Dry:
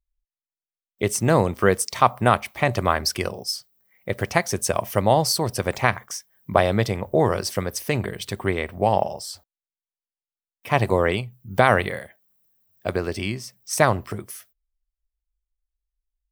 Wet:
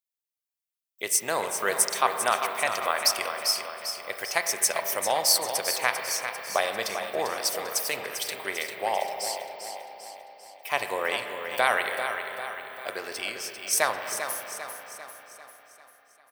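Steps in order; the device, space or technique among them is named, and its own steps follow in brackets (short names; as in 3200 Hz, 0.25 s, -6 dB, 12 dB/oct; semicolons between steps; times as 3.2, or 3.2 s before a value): HPF 870 Hz 12 dB/oct; smiley-face EQ (low shelf 95 Hz +9 dB; bell 1200 Hz -5 dB 1.7 oct; high shelf 8800 Hz +7 dB); feedback echo 0.396 s, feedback 51%, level -8.5 dB; spring tank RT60 3.9 s, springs 31/35/40 ms, chirp 25 ms, DRR 6 dB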